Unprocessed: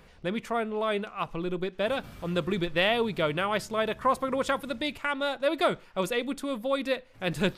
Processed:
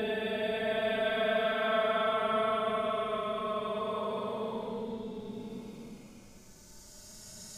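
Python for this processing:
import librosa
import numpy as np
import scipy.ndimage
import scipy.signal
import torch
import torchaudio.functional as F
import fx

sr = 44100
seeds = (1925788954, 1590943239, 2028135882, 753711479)

y = np.flip(x).copy()
y = fx.paulstretch(y, sr, seeds[0], factor=41.0, window_s=0.05, from_s=3.73)
y = F.gain(torch.from_numpy(y), -5.0).numpy()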